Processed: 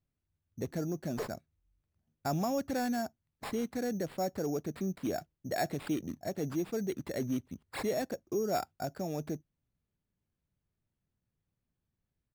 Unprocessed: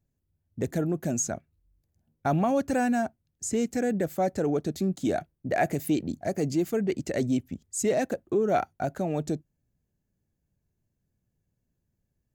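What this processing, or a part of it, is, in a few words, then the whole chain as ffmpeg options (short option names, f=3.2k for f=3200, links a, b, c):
crushed at another speed: -af "asetrate=35280,aresample=44100,acrusher=samples=9:mix=1:aa=0.000001,asetrate=55125,aresample=44100,volume=-7.5dB"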